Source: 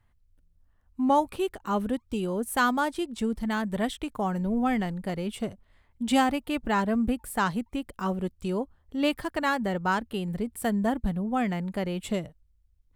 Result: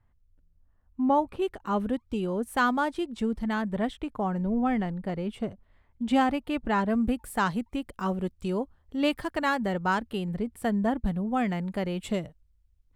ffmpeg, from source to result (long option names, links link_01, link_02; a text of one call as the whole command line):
ffmpeg -i in.wav -af "asetnsamples=nb_out_samples=441:pad=0,asendcmd='1.42 lowpass f 3400;3.7 lowpass f 1800;6.21 lowpass f 3100;6.9 lowpass f 7900;10.24 lowpass f 3200;11.05 lowpass f 7300',lowpass=frequency=1300:poles=1" out.wav